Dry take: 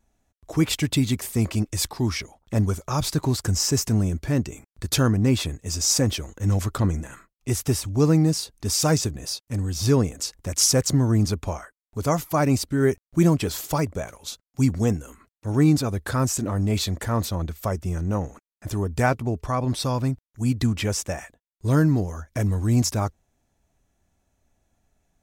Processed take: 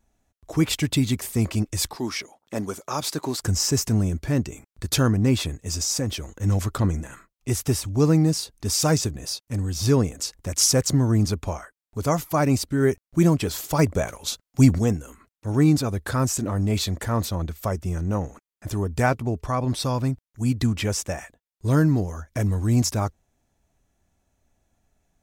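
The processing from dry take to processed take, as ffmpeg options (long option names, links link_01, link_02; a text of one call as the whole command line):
ffmpeg -i in.wav -filter_complex "[0:a]asettb=1/sr,asplit=3[link_01][link_02][link_03];[link_01]atrim=end=1.964[link_04];[link_02]atrim=start=1.96:end=3.42,asetpts=PTS-STARTPTS,afade=type=in:duration=0.004:curve=qsin,afade=type=out:start_time=1.456:duration=0.004:curve=qsin,highpass=260[link_05];[link_03]atrim=start=3.416[link_06];[link_04][link_05]acrossfade=duration=0.004:curve1=hsin:curve2=qsin[link_07];[link_07][link_06]acrossfade=duration=0.004:curve1=qsin:curve2=hsin,asettb=1/sr,asplit=3[link_08][link_09][link_10];[link_08]atrim=end=5.834[link_11];[link_09]atrim=start=5.83:end=6.31,asetpts=PTS-STARTPTS,afade=type=in:duration=0.004:curve=qsin,afade=type=out:start_time=0.476:duration=0.004:curve=qsin,acompressor=threshold=-29dB:ratio=1.5:attack=3.2:release=140:knee=1:detection=peak[link_12];[link_10]atrim=start=6.306[link_13];[link_11][link_12]acrossfade=duration=0.004:curve1=hsin:curve2=qsin[link_14];[link_14][link_13]acrossfade=duration=0.004:curve1=qsin:curve2=hsin,asplit=3[link_15][link_16][link_17];[link_15]afade=type=out:start_time=13.78:duration=0.02[link_18];[link_16]acontrast=50,afade=type=in:start_time=13.78:duration=0.02,afade=type=out:start_time=14.78:duration=0.02[link_19];[link_17]afade=type=in:start_time=14.78:duration=0.02[link_20];[link_18][link_19][link_20]amix=inputs=3:normalize=0" out.wav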